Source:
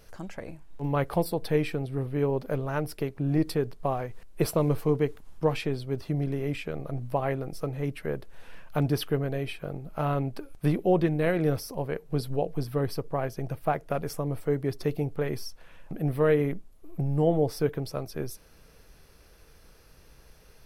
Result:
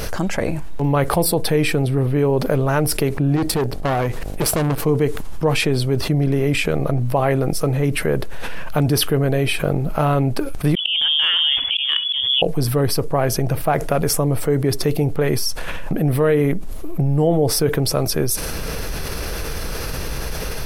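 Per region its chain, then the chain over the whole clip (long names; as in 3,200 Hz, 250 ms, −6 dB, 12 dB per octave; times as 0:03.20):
0:03.35–0:04.84: tube saturation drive 30 dB, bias 0.7 + hum with harmonics 50 Hz, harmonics 16, −64 dBFS
0:10.75–0:12.42: voice inversion scrambler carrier 3,400 Hz + downward compressor, threshold −27 dBFS + volume swells 215 ms
whole clip: dynamic equaliser 9,100 Hz, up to +7 dB, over −58 dBFS, Q 0.89; envelope flattener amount 70%; level +5 dB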